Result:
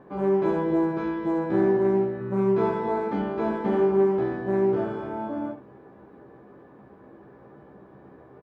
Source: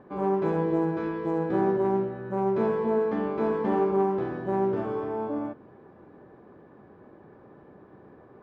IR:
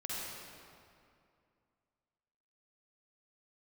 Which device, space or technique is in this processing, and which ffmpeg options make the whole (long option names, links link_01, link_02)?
slapback doubling: -filter_complex "[0:a]asplit=3[link_01][link_02][link_03];[link_02]adelay=15,volume=-3dB[link_04];[link_03]adelay=69,volume=-9dB[link_05];[link_01][link_04][link_05]amix=inputs=3:normalize=0,asettb=1/sr,asplit=3[link_06][link_07][link_08];[link_06]atrim=end=2.184[link_09];[link_07]atrim=start=2.18:end=3.22,asetpts=PTS-STARTPTS,afade=type=in:duration=0.004:curve=qsin,afade=type=out:start_time=1.036:duration=0.004:curve=qsin,asplit=2[link_10][link_11];[link_11]adelay=25,volume=-3dB[link_12];[link_10][link_12]amix=inputs=2:normalize=0,atrim=end_sample=45864[link_13];[link_08]atrim=start=3.216[link_14];[link_09][link_13]acrossfade=duration=0.004:curve1=hsin:curve2=qsin[link_15];[link_15][link_14]acrossfade=duration=0.004:curve1=qsin:curve2=hsin"